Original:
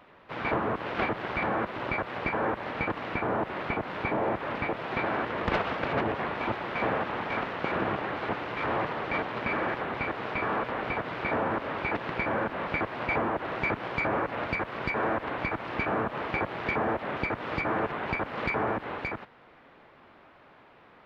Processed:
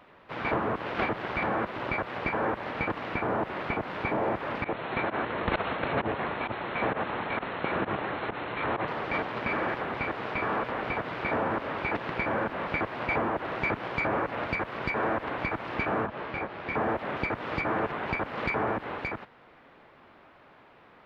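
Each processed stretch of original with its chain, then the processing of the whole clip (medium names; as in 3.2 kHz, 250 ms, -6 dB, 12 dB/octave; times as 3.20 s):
4.64–8.88 s: volume shaper 131 bpm, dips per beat 1, -21 dB, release 75 ms + brick-wall FIR low-pass 4.3 kHz
16.06–16.75 s: low-pass 5 kHz + detune thickener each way 32 cents
whole clip: none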